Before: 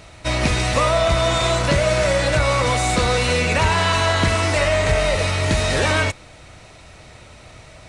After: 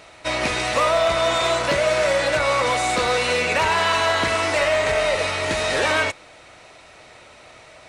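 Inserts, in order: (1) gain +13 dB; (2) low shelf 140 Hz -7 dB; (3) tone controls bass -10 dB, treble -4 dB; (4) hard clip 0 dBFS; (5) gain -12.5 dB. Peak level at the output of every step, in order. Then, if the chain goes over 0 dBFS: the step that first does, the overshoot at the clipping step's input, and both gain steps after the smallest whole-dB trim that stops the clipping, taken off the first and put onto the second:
+4.5, +5.0, +5.5, 0.0, -12.5 dBFS; step 1, 5.5 dB; step 1 +7 dB, step 5 -6.5 dB

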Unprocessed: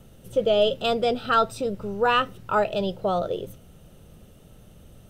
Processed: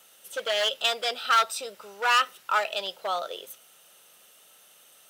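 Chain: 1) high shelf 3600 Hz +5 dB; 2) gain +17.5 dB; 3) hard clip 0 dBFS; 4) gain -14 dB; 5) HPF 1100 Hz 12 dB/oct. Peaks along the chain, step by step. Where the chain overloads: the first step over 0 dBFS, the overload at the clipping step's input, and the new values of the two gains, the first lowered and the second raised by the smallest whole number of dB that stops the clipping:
-9.0, +8.5, 0.0, -14.0, -9.5 dBFS; step 2, 8.5 dB; step 2 +8.5 dB, step 4 -5 dB

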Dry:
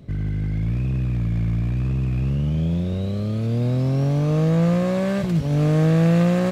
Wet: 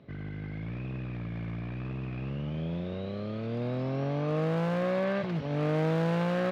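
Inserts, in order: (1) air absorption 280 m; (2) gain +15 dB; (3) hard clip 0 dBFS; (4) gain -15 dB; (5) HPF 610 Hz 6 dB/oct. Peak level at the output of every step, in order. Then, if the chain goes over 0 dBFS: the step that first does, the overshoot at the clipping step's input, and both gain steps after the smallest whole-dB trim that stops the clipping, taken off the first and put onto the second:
-8.5, +6.5, 0.0, -15.0, -17.0 dBFS; step 2, 6.5 dB; step 2 +8 dB, step 4 -8 dB

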